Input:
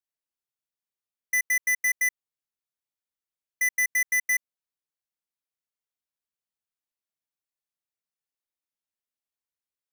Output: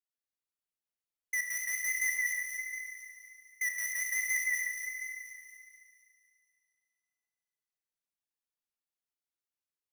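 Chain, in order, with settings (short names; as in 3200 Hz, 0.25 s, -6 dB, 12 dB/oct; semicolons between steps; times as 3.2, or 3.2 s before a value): split-band echo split 2400 Hz, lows 0.174 s, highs 0.24 s, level -4 dB; vibrato 7 Hz 42 cents; Schroeder reverb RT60 2.3 s, combs from 26 ms, DRR 3 dB; gain -8.5 dB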